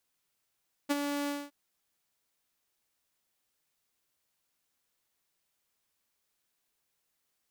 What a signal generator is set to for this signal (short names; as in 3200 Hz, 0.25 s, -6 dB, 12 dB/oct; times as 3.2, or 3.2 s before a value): ADSR saw 287 Hz, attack 21 ms, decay 29 ms, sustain -7 dB, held 0.39 s, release 0.225 s -21.5 dBFS